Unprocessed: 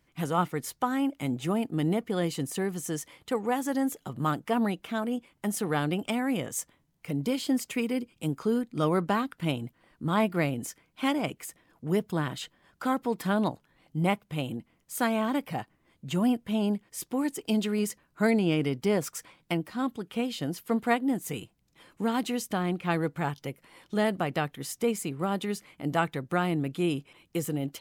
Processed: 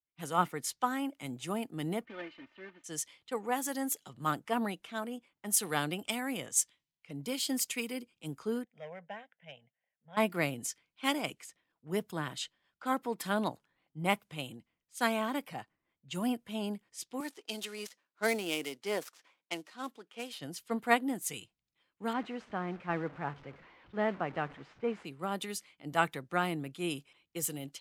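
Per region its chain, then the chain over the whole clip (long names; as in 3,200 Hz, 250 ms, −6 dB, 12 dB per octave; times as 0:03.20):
0:02.05–0:02.84: one scale factor per block 3 bits + transistor ladder low-pass 2,900 Hz, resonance 35% + comb filter 3.3 ms, depth 79%
0:08.64–0:10.17: hard clipping −19.5 dBFS + loudspeaker in its box 220–5,100 Hz, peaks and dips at 260 Hz −8 dB, 370 Hz −8 dB, 940 Hz −9 dB, 1,400 Hz −6 dB, 2,500 Hz −5 dB, 4,100 Hz −6 dB + phaser with its sweep stopped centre 1,200 Hz, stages 6
0:17.20–0:20.40: gap after every zero crossing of 0.064 ms + high-pass filter 310 Hz
0:22.13–0:25.05: linear delta modulator 64 kbit/s, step −35.5 dBFS + low-pass filter 2,100 Hz
whole clip: low-pass that shuts in the quiet parts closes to 2,800 Hz, open at −26 dBFS; spectral tilt +2 dB per octave; multiband upward and downward expander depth 70%; level −4.5 dB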